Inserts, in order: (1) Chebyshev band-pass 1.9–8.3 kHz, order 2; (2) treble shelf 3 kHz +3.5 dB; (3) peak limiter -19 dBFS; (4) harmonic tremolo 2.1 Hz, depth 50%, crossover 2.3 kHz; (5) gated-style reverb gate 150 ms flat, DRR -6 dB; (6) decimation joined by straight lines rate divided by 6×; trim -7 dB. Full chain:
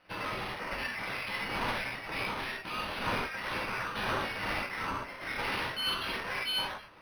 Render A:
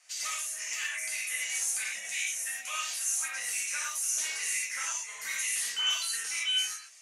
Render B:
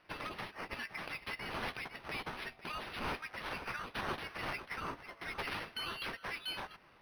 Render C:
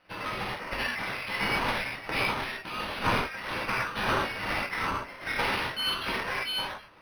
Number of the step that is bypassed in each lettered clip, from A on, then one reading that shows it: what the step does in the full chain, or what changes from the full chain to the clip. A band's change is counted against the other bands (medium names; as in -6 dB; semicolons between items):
6, 8 kHz band +29.5 dB; 5, 4 kHz band -1.5 dB; 3, mean gain reduction 2.0 dB